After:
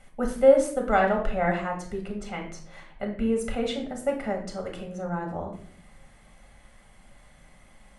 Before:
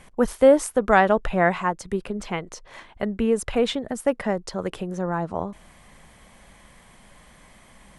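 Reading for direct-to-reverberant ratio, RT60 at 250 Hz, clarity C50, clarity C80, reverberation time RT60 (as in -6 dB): 0.5 dB, 0.90 s, 7.5 dB, 11.5 dB, 0.55 s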